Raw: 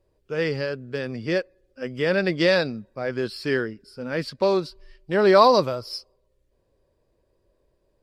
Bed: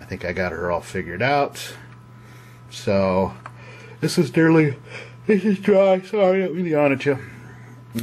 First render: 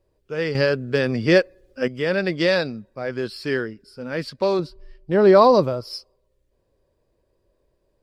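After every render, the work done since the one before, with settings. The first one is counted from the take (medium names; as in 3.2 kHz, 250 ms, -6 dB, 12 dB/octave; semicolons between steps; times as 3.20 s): 0.55–1.88 s: gain +8.5 dB; 4.59–5.81 s: tilt shelf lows +5.5 dB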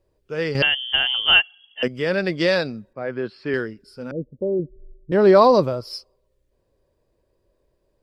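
0.62–1.83 s: frequency inversion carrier 3.3 kHz; 2.93–3.54 s: band-pass 110–2300 Hz; 4.11–5.12 s: steep low-pass 520 Hz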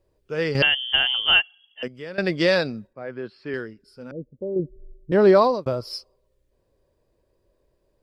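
1.00–2.18 s: fade out linear, to -17 dB; 2.87–4.56 s: gain -6 dB; 5.11–5.66 s: fade out equal-power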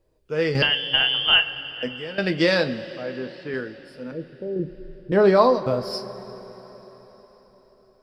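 two-slope reverb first 0.21 s, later 4.6 s, from -20 dB, DRR 6 dB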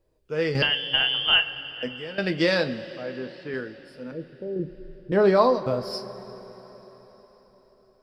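trim -2.5 dB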